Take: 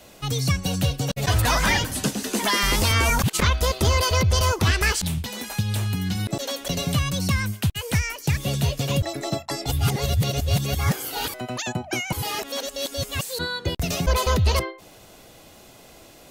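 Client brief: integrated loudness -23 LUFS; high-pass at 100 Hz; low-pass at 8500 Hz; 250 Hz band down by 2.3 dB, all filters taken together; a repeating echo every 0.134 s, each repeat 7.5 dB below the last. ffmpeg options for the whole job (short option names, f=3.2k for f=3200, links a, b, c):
-af "highpass=100,lowpass=8.5k,equalizer=f=250:t=o:g=-3,aecho=1:1:134|268|402|536|670:0.422|0.177|0.0744|0.0312|0.0131,volume=1.5dB"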